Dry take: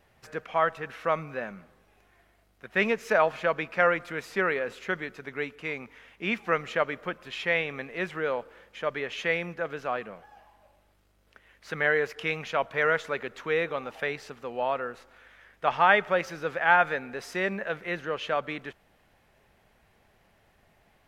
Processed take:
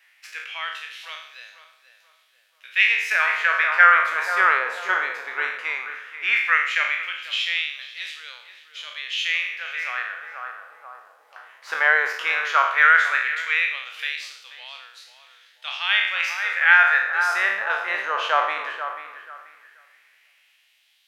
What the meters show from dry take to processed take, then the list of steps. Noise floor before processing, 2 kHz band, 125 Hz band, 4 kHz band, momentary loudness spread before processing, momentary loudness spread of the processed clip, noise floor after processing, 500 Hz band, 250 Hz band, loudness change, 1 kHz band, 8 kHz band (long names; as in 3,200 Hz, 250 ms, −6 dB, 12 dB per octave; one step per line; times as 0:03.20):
−65 dBFS, +10.5 dB, below −30 dB, +12.0 dB, 13 LU, 22 LU, −60 dBFS, −8.5 dB, below −15 dB, +8.5 dB, +5.5 dB, +8.5 dB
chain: peak hold with a decay on every bin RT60 0.71 s
tape delay 485 ms, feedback 38%, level −8 dB, low-pass 1,600 Hz
auto-filter high-pass sine 0.15 Hz 950–3,900 Hz
level +4 dB